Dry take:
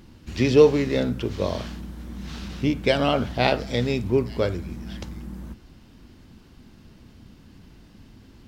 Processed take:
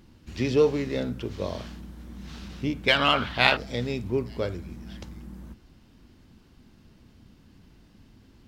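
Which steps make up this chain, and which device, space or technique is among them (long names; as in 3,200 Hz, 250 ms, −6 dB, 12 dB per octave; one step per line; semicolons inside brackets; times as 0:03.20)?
0:02.88–0:03.57: flat-topped bell 2,000 Hz +12.5 dB 2.5 octaves
parallel distortion (in parallel at −10 dB: hard clipping −11.5 dBFS, distortion −9 dB)
on the sum: level −8 dB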